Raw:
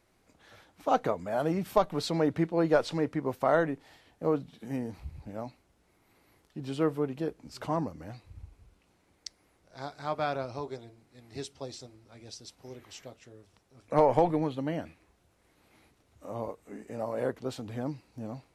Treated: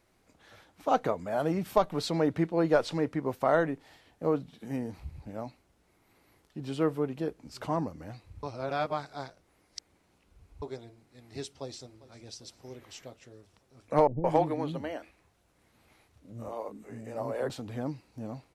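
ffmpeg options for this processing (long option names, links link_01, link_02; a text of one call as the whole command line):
ffmpeg -i in.wav -filter_complex "[0:a]asplit=2[link_01][link_02];[link_02]afade=type=in:start_time=11.49:duration=0.01,afade=type=out:start_time=12.23:duration=0.01,aecho=0:1:400|800|1200|1600|2000:0.125893|0.0755355|0.0453213|0.0271928|0.0163157[link_03];[link_01][link_03]amix=inputs=2:normalize=0,asettb=1/sr,asplit=3[link_04][link_05][link_06];[link_04]atrim=end=14.074[link_07];[link_05]atrim=start=14.07:end=17.5,asetpts=PTS-STARTPTS,afade=type=in:duration=0.004:curve=qsin,afade=type=out:start_time=3.426:duration=0.004:curve=qsin,acrossover=split=310[link_08][link_09];[link_09]adelay=170[link_10];[link_08][link_10]amix=inputs=2:normalize=0,atrim=end_sample=151263[link_11];[link_06]atrim=start=17.496[link_12];[link_07][link_11]acrossfade=duration=0.004:curve1=hsin:curve2=qsin[link_13];[link_13][link_12]acrossfade=duration=0.004:curve1=qsin:curve2=hsin,asplit=3[link_14][link_15][link_16];[link_14]atrim=end=8.432[link_17];[link_15]atrim=start=8.428:end=10.622,asetpts=PTS-STARTPTS,areverse[link_18];[link_16]atrim=start=10.618[link_19];[link_17][link_18]acrossfade=duration=0.004:curve1=hsin:curve2=hsin[link_20];[link_20][link_19]acrossfade=duration=0.004:curve1=hsin:curve2=hsin" out.wav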